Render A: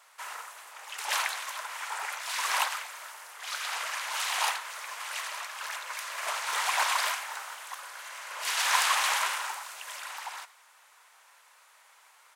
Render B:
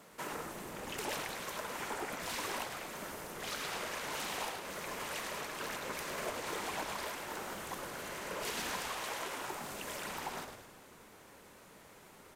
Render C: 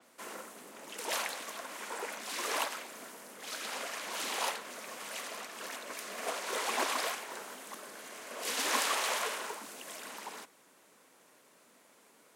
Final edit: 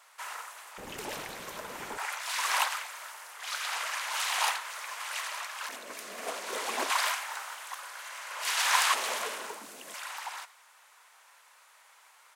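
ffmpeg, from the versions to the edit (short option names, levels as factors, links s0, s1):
-filter_complex "[2:a]asplit=2[s0][s1];[0:a]asplit=4[s2][s3][s4][s5];[s2]atrim=end=0.782[s6];[1:a]atrim=start=0.778:end=1.982[s7];[s3]atrim=start=1.978:end=5.692[s8];[s0]atrim=start=5.688:end=6.902[s9];[s4]atrim=start=6.898:end=8.942[s10];[s1]atrim=start=8.938:end=9.942[s11];[s5]atrim=start=9.938[s12];[s6][s7]acrossfade=d=0.004:c1=hsin:c2=hsin[s13];[s13][s8]acrossfade=d=0.004:c1=hsin:c2=hsin[s14];[s14][s9]acrossfade=d=0.004:c1=hsin:c2=hsin[s15];[s15][s10]acrossfade=d=0.004:c1=hsin:c2=hsin[s16];[s16][s11]acrossfade=d=0.004:c1=hsin:c2=hsin[s17];[s17][s12]acrossfade=d=0.004:c1=hsin:c2=hsin"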